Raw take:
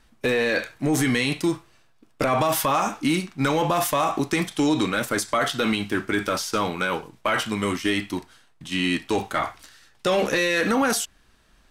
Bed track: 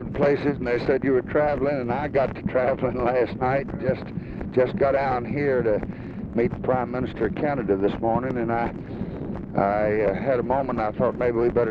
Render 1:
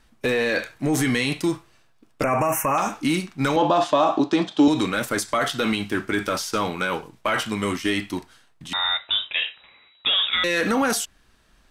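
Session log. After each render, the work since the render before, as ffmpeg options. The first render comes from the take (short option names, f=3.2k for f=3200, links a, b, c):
-filter_complex "[0:a]asettb=1/sr,asplit=3[a][b][c];[a]atrim=end=2.234[d];[b]atrim=start=2.23:end=2.78,asetpts=PTS-STARTPTS,afade=t=in:d=0.004:c=qsin,afade=t=out:st=0.546:d=0.004:c=qsin,asuperstop=centerf=4000:order=12:qfactor=1.4[e];[c]atrim=start=2.776[f];[d][e]acrossfade=d=0.004:c1=hsin:c2=qsin[g];[g][f]acrossfade=d=0.004:c1=qsin:c2=hsin,asettb=1/sr,asplit=3[h][i][j];[h]atrim=end=3.564[k];[i]atrim=start=3.56:end=4.68,asetpts=PTS-STARTPTS,afade=t=in:d=0.004:c=qsin,afade=t=out:st=1.116:d=0.004:c=qsin,highpass=170,equalizer=f=300:t=q:w=4:g=8,equalizer=f=620:t=q:w=4:g=7,equalizer=f=900:t=q:w=4:g=4,equalizer=f=2.1k:t=q:w=4:g=-10,equalizer=f=3.6k:t=q:w=4:g=4,equalizer=f=5.7k:t=q:w=4:g=-5,lowpass=f=6k:w=0.5412,lowpass=f=6k:w=1.3066[l];[j]atrim=start=4.676[m];[k][l]acrossfade=d=0.004:c1=hsin:c2=qsin[n];[n][m]acrossfade=d=0.004:c1=qsin:c2=hsin,asettb=1/sr,asplit=3[o][p][q];[o]atrim=end=8.734[r];[p]atrim=start=8.73:end=10.44,asetpts=PTS-STARTPTS,afade=t=in:d=0.004:c=qsin,afade=t=out:st=1.706:d=0.004:c=qsin,lowpass=f=3.3k:t=q:w=0.5098,lowpass=f=3.3k:t=q:w=0.6013,lowpass=f=3.3k:t=q:w=0.9,lowpass=f=3.3k:t=q:w=2.563,afreqshift=-3900[s];[q]atrim=start=10.436[t];[r][s]acrossfade=d=0.004:c1=hsin:c2=qsin[u];[u][t]acrossfade=d=0.004:c1=qsin:c2=hsin"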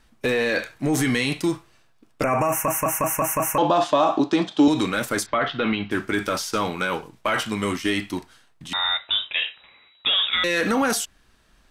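-filter_complex "[0:a]asettb=1/sr,asplit=3[a][b][c];[a]atrim=end=5.264[d];[b]atrim=start=5.26:end=5.91,asetpts=PTS-STARTPTS,afade=t=in:d=0.004:c=qsin,afade=t=out:st=0.646:d=0.004:c=qsin,lowpass=f=3.4k:w=0.5412,lowpass=f=3.4k:w=1.3066[e];[c]atrim=start=5.906[f];[d][e]acrossfade=d=0.004:c1=hsin:c2=qsin[g];[g][f]acrossfade=d=0.004:c1=qsin:c2=hsin,asplit=7[h][i][j][k][l][m][n];[h]atrim=end=2.682[o];[i]atrim=start=2.498:end=2.682[p];[j]atrim=start=2.498:end=2.682[q];[k]atrim=start=2.498:end=2.682[r];[l]atrim=start=2.498:end=2.682[s];[m]atrim=start=2.498:end=2.682[t];[n]atrim=start=3.578[u];[o][p]acrossfade=d=0.004:c1=hsin:c2=hsin[v];[v][q]acrossfade=d=0.004:c1=hsin:c2=hsin[w];[w][r]acrossfade=d=0.004:c1=hsin:c2=hsin[x];[x][s]acrossfade=d=0.004:c1=hsin:c2=hsin[y];[y][t]acrossfade=d=0.004:c1=hsin:c2=hsin[z];[z][u]acrossfade=d=0.004:c1=hsin:c2=hsin"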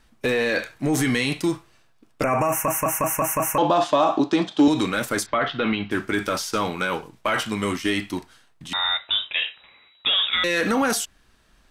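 -af "asoftclip=type=hard:threshold=-9.5dB"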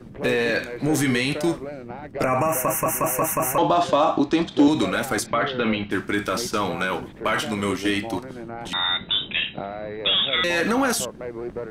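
-filter_complex "[1:a]volume=-10.5dB[a];[0:a][a]amix=inputs=2:normalize=0"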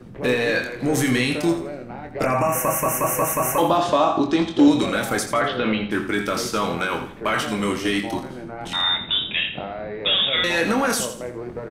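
-filter_complex "[0:a]asplit=2[a][b];[b]adelay=24,volume=-7dB[c];[a][c]amix=inputs=2:normalize=0,asplit=2[d][e];[e]aecho=0:1:83|166|249|332:0.299|0.104|0.0366|0.0128[f];[d][f]amix=inputs=2:normalize=0"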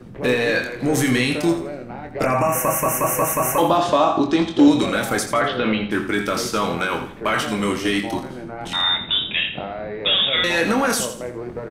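-af "volume=1.5dB"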